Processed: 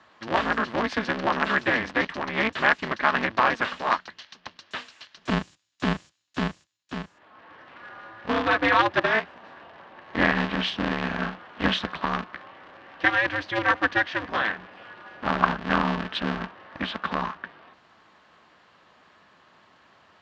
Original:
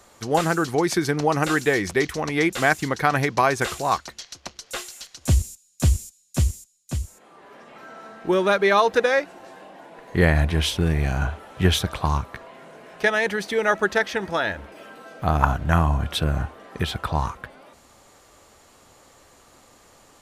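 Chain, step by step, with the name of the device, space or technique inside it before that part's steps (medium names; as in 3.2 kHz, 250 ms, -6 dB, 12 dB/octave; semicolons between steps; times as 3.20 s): ring modulator pedal into a guitar cabinet (polarity switched at an audio rate 110 Hz; cabinet simulation 98–4400 Hz, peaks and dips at 130 Hz -5 dB, 430 Hz -5 dB, 1.1 kHz +5 dB, 1.7 kHz +7 dB, 2.9 kHz +4 dB); trim -4.5 dB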